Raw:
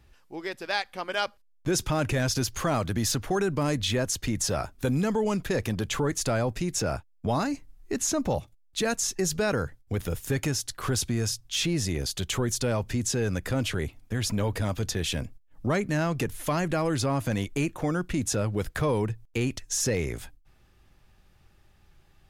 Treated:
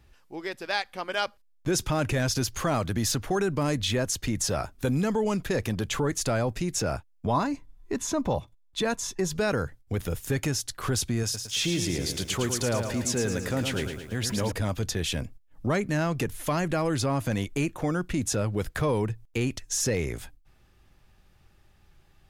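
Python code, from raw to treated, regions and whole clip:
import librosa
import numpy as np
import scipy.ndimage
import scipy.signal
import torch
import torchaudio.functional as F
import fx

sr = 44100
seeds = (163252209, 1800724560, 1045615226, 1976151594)

y = fx.chain(x, sr, fx.high_shelf(hz=3800.0, db=-7.0),
    fx.small_body(hz=(1000.0, 3500.0), ring_ms=45, db=12), at=(7.27, 9.36))
y = fx.chain(y, sr, fx.low_shelf(hz=76.0, db=-9.5),
    fx.echo_crushed(ms=110, feedback_pct=55, bits=9, wet_db=-6), at=(11.23, 14.52))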